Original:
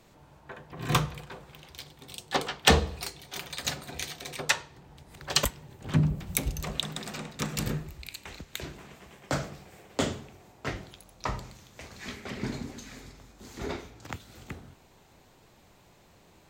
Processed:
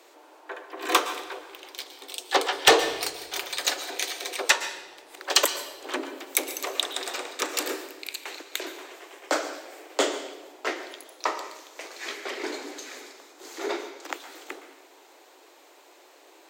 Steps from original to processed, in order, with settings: steep high-pass 300 Hz 72 dB/oct; soft clip -12 dBFS, distortion -16 dB; on a send: reverb RT60 1.1 s, pre-delay 0.113 s, DRR 11 dB; on the sum: gain +6.5 dB

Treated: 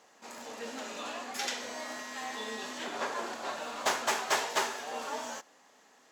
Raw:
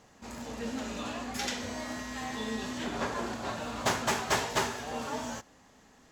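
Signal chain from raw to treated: HPF 420 Hz 12 dB/oct

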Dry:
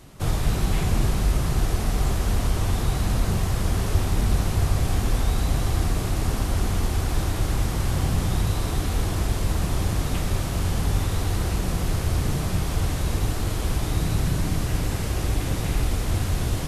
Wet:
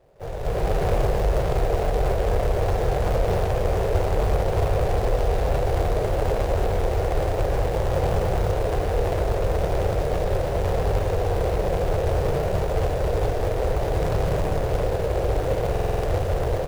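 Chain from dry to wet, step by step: median filter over 41 samples; resonant low shelf 360 Hz -11 dB, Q 3; AGC gain up to 14 dB; soft clip -8 dBFS, distortion -24 dB; stuck buffer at 15.71, samples 2048, times 6; gain -2.5 dB

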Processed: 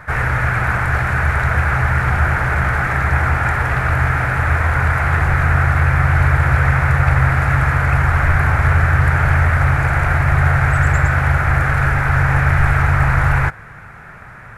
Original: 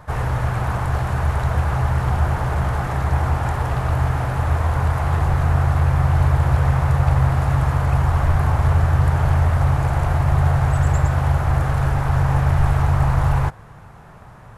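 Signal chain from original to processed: band shelf 1800 Hz +12.5 dB 1.1 oct; gain +2 dB

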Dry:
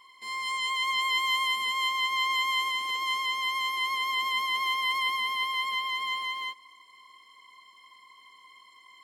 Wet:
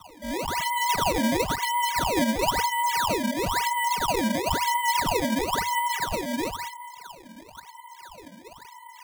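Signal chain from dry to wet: LPF 12000 Hz 12 dB/oct; bell 640 Hz +14.5 dB 1.6 oct; spectral gate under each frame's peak -15 dB strong; in parallel at -1 dB: compressor, threshold -34 dBFS, peak gain reduction 14.5 dB; on the sum: fixed phaser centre 2600 Hz, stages 6; on a send: tape echo 0.204 s, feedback 61%, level -3.5 dB, low-pass 1600 Hz; on the sum: decimation with a swept rate 18×, swing 160% 0.99 Hz; frequency shift -97 Hz

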